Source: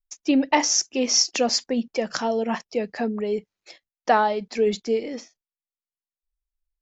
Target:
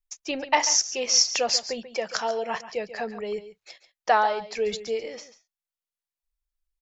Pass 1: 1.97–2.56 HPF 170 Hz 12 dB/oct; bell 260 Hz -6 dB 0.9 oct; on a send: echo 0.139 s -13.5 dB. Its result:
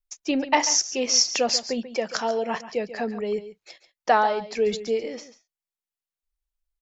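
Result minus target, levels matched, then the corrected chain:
250 Hz band +8.0 dB
1.97–2.56 HPF 170 Hz 12 dB/oct; bell 260 Hz -17 dB 0.9 oct; on a send: echo 0.139 s -13.5 dB

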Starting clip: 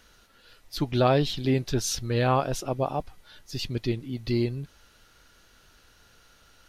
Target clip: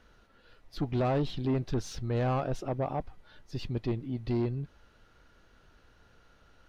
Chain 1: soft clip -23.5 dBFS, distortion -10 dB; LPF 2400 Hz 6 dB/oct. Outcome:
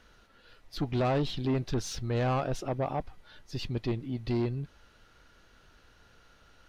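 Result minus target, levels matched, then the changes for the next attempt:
2000 Hz band +3.0 dB
change: LPF 1200 Hz 6 dB/oct

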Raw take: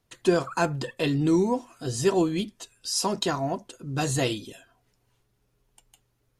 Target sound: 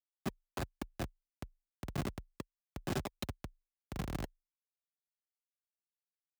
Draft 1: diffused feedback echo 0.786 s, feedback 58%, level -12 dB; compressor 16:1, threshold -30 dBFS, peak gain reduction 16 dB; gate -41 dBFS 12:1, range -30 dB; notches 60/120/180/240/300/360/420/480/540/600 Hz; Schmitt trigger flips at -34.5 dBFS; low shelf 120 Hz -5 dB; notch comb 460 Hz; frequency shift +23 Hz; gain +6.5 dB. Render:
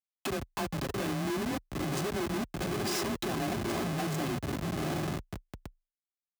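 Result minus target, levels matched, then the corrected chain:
Schmitt trigger: distortion -24 dB
diffused feedback echo 0.786 s, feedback 58%, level -12 dB; compressor 16:1, threshold -30 dBFS, peak gain reduction 16 dB; gate -41 dBFS 12:1, range -30 dB; notches 60/120/180/240/300/360/420/480/540/600 Hz; Schmitt trigger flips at -25.5 dBFS; low shelf 120 Hz -5 dB; notch comb 460 Hz; frequency shift +23 Hz; gain +6.5 dB

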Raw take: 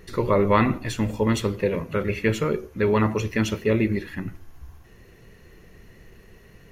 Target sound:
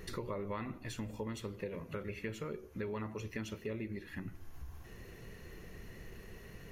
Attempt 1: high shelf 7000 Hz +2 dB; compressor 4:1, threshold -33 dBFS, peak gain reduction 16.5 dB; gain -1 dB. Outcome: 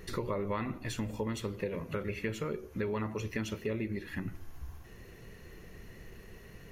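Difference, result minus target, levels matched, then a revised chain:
compressor: peak gain reduction -5.5 dB
high shelf 7000 Hz +2 dB; compressor 4:1, threshold -40.5 dBFS, peak gain reduction 22 dB; gain -1 dB

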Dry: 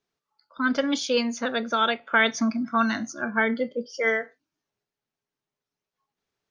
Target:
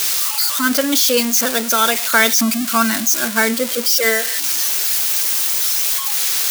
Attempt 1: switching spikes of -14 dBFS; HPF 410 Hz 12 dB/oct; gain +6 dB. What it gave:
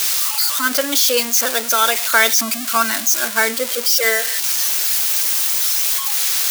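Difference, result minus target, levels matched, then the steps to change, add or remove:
125 Hz band -10.5 dB
change: HPF 110 Hz 12 dB/oct

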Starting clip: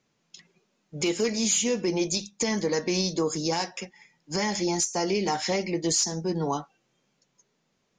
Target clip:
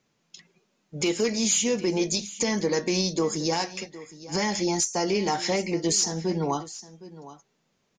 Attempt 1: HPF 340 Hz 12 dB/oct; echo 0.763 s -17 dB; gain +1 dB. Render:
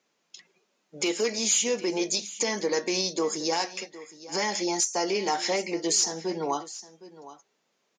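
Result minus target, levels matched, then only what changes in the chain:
250 Hz band -3.5 dB
remove: HPF 340 Hz 12 dB/oct

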